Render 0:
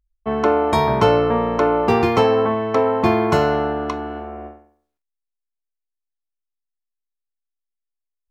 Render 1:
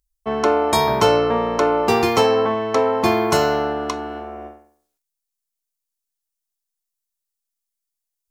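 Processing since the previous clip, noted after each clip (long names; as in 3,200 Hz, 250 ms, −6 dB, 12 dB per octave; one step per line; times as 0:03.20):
bass and treble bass −5 dB, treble +13 dB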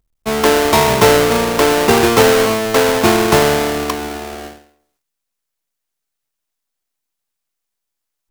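each half-wave held at its own peak
level +1 dB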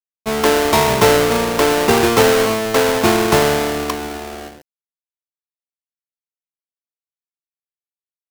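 bit reduction 7 bits
level −2 dB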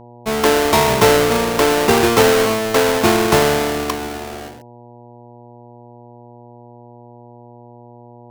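hum with harmonics 120 Hz, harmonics 8, −41 dBFS −2 dB per octave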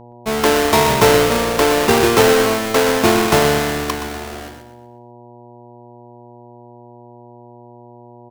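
repeating echo 122 ms, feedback 41%, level −10.5 dB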